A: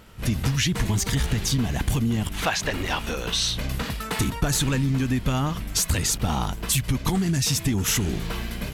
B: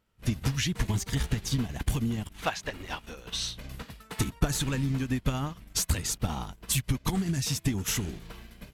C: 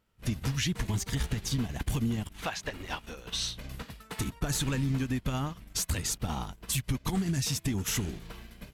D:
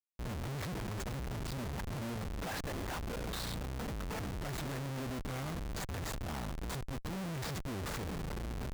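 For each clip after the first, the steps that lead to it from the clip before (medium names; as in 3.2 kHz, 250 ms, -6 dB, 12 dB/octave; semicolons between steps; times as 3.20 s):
upward expansion 2.5:1, over -35 dBFS
peak limiter -21 dBFS, peak gain reduction 7.5 dB
median filter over 15 samples; valve stage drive 41 dB, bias 0.4; Schmitt trigger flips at -54 dBFS; trim +6 dB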